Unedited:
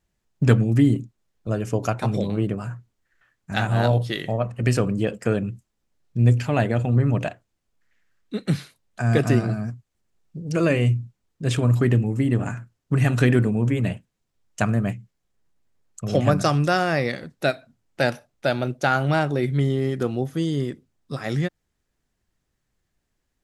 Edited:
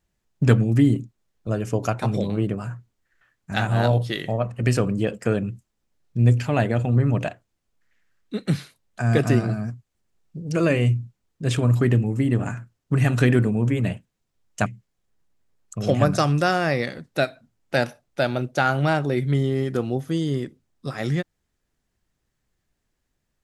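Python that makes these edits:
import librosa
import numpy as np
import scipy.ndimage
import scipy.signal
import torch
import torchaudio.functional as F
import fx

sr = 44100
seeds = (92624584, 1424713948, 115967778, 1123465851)

y = fx.edit(x, sr, fx.cut(start_s=14.66, length_s=0.26), tone=tone)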